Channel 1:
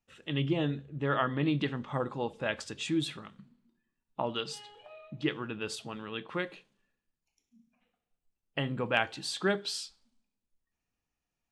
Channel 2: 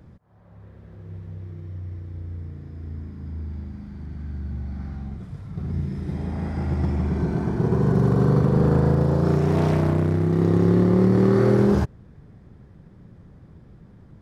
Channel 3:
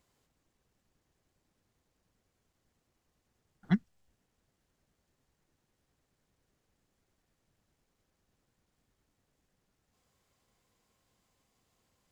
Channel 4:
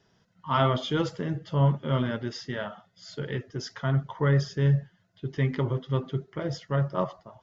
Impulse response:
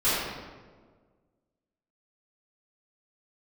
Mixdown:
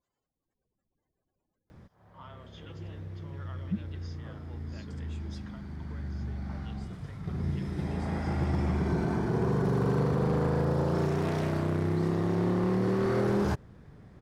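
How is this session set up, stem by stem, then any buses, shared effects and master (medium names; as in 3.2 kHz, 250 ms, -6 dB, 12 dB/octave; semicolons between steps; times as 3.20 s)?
-20.0 dB, 2.30 s, no send, none
+1.5 dB, 1.70 s, no send, none
-6.5 dB, 0.00 s, no send, spectral gate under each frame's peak -15 dB strong; level rider gain up to 7.5 dB
-12.5 dB, 1.70 s, no send, compression 6:1, threshold -34 dBFS, peak gain reduction 15 dB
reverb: none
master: hard clipper -12 dBFS, distortion -17 dB; bass shelf 390 Hz -7 dB; peak limiter -20 dBFS, peak gain reduction 8 dB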